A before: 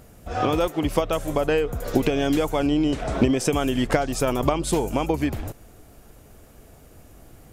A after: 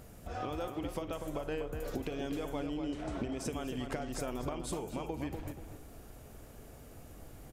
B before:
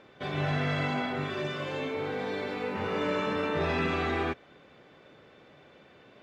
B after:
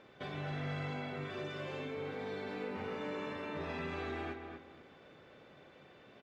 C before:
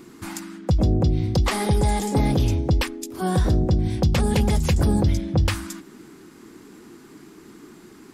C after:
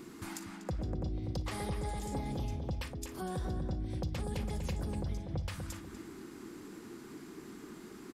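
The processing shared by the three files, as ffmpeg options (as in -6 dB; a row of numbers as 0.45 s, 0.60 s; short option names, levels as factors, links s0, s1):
-filter_complex "[0:a]asplit=2[s0][s1];[s1]aecho=0:1:41|57:0.15|0.141[s2];[s0][s2]amix=inputs=2:normalize=0,acompressor=threshold=0.0126:ratio=2.5,asplit=2[s3][s4];[s4]adelay=244,lowpass=f=2500:p=1,volume=0.501,asplit=2[s5][s6];[s6]adelay=244,lowpass=f=2500:p=1,volume=0.29,asplit=2[s7][s8];[s8]adelay=244,lowpass=f=2500:p=1,volume=0.29,asplit=2[s9][s10];[s10]adelay=244,lowpass=f=2500:p=1,volume=0.29[s11];[s5][s7][s9][s11]amix=inputs=4:normalize=0[s12];[s3][s12]amix=inputs=2:normalize=0,volume=0.631"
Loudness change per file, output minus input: -15.5 LU, -10.0 LU, -18.0 LU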